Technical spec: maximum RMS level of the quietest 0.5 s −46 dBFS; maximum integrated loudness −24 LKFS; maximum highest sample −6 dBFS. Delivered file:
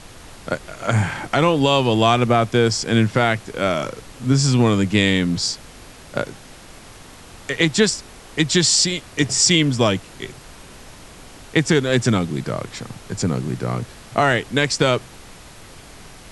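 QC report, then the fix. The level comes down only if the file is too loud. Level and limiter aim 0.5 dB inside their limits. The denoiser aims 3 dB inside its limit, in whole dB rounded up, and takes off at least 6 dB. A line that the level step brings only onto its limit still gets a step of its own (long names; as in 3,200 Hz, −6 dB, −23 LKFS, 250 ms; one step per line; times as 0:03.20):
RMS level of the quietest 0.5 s −42 dBFS: out of spec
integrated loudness −19.0 LKFS: out of spec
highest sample −3.5 dBFS: out of spec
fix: level −5.5 dB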